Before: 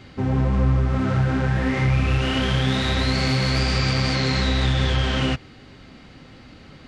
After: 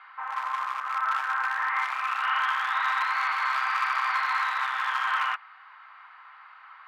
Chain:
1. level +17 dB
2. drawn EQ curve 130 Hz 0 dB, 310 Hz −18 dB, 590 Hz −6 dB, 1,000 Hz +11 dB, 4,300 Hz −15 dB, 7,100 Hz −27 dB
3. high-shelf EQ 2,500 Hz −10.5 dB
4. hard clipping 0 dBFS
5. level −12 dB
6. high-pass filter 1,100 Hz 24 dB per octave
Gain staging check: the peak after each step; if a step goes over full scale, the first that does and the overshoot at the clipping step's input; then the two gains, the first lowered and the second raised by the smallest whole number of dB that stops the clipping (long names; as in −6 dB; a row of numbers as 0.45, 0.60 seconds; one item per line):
+8.0, +8.0, +7.5, 0.0, −12.0, −15.0 dBFS
step 1, 7.5 dB
step 1 +9 dB, step 5 −4 dB